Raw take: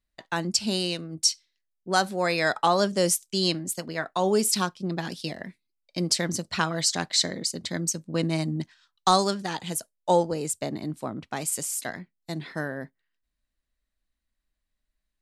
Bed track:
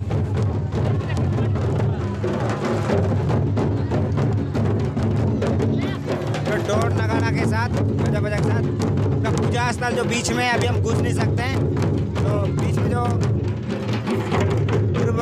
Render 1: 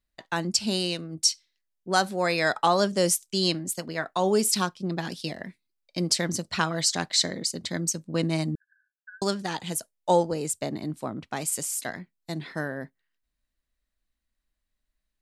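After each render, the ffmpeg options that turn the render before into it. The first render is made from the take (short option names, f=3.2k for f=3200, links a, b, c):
-filter_complex "[0:a]asettb=1/sr,asplit=3[a][b][c];[a]atrim=end=8.554[d];[b]atrim=start=8.55:end=9.22,asetpts=PTS-STARTPTS,afade=t=in:d=0.004:c=qsin,afade=t=out:st=0.666:d=0.004:c=qsin,asuperpass=centerf=1600:order=12:qfactor=6.7[e];[c]atrim=start=9.216[f];[d][e]acrossfade=d=0.004:c1=hsin:c2=qsin[g];[g][f]acrossfade=d=0.004:c1=qsin:c2=hsin"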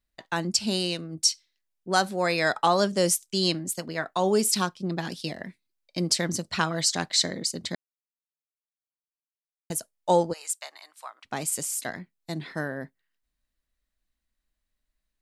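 -filter_complex "[0:a]asplit=3[a][b][c];[a]afade=t=out:st=10.32:d=0.02[d];[b]highpass=f=930:w=0.5412,highpass=f=930:w=1.3066,afade=t=in:st=10.32:d=0.02,afade=t=out:st=11.24:d=0.02[e];[c]afade=t=in:st=11.24:d=0.02[f];[d][e][f]amix=inputs=3:normalize=0,asplit=3[g][h][i];[g]atrim=end=7.75,asetpts=PTS-STARTPTS,afade=t=out:st=7.746:d=0.004:c=hsin[j];[h]atrim=start=7.75:end=9.7,asetpts=PTS-STARTPTS,volume=0[k];[i]atrim=start=9.7,asetpts=PTS-STARTPTS,afade=t=in:d=0.004:c=hsin[l];[j][k][l]concat=n=3:v=0:a=1"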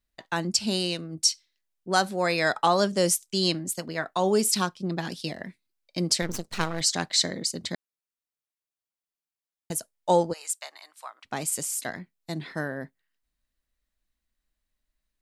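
-filter_complex "[0:a]asettb=1/sr,asplit=3[a][b][c];[a]atrim=end=6.224[d];[b]atrim=start=6.22:end=6.81,asetpts=PTS-STARTPTS,afade=t=in:d=0.004:c=qsin,afade=t=out:st=0.586:d=0.004:c=qsin,aeval=exprs='max(val(0),0)':c=same[e];[c]atrim=start=6.806[f];[d][e]acrossfade=d=0.004:c1=hsin:c2=qsin[g];[g][f]acrossfade=d=0.004:c1=qsin:c2=hsin"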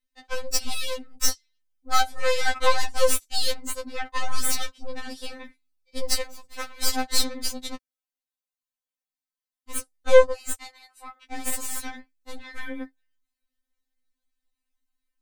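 -af "aeval=exprs='0.422*(cos(1*acos(clip(val(0)/0.422,-1,1)))-cos(1*PI/2))+0.0841*(cos(8*acos(clip(val(0)/0.422,-1,1)))-cos(8*PI/2))':c=same,afftfilt=real='re*3.46*eq(mod(b,12),0)':imag='im*3.46*eq(mod(b,12),0)':win_size=2048:overlap=0.75"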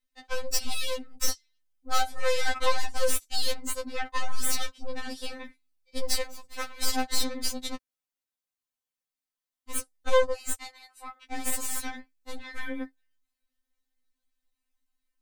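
-af "asoftclip=type=tanh:threshold=-14.5dB"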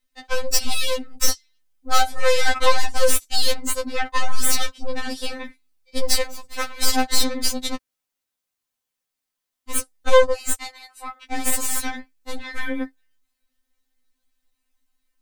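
-af "volume=8dB"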